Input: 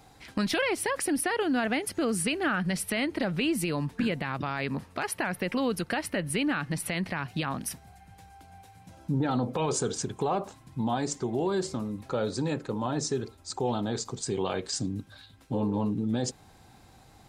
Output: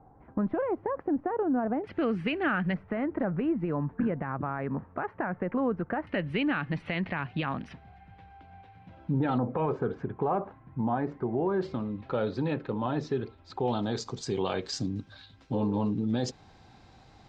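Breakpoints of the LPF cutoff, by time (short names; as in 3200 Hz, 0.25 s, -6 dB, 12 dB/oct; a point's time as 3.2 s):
LPF 24 dB/oct
1100 Hz
from 1.84 s 2700 Hz
from 2.74 s 1500 Hz
from 6.07 s 3100 Hz
from 9.38 s 1900 Hz
from 11.61 s 3400 Hz
from 13.68 s 5700 Hz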